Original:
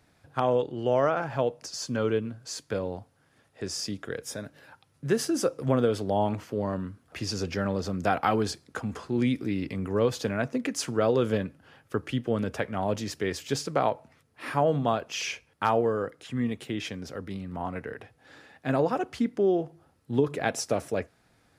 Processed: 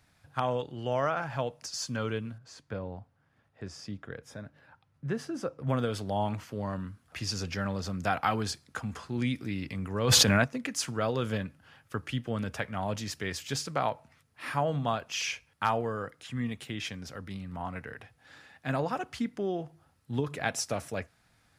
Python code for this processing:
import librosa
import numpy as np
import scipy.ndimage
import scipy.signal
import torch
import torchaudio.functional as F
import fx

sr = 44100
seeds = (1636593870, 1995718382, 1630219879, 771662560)

y = fx.lowpass(x, sr, hz=1100.0, slope=6, at=(2.38, 5.69))
y = fx.env_flatten(y, sr, amount_pct=100, at=(10.03, 10.43), fade=0.02)
y = fx.peak_eq(y, sr, hz=390.0, db=-9.5, octaves=1.6)